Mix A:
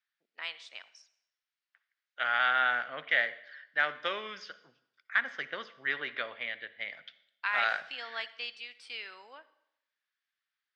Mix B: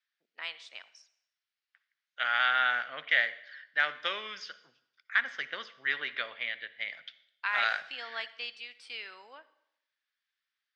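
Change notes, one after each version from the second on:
second voice: add tilt shelving filter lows −5 dB, about 1,400 Hz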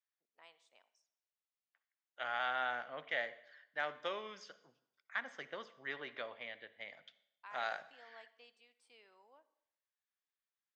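first voice −11.5 dB
master: add flat-topped bell 2,700 Hz −13 dB 2.4 octaves

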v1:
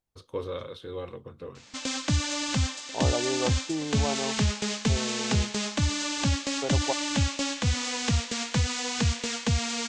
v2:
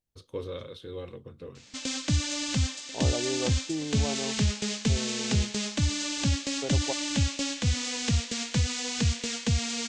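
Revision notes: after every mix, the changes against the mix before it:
master: add parametric band 1,000 Hz −7.5 dB 1.6 octaves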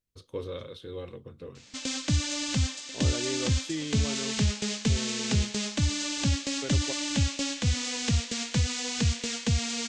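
second voice: remove low-pass with resonance 820 Hz, resonance Q 4.2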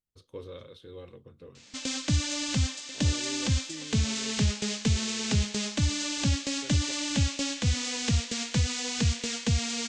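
first voice −6.0 dB
second voice −9.5 dB

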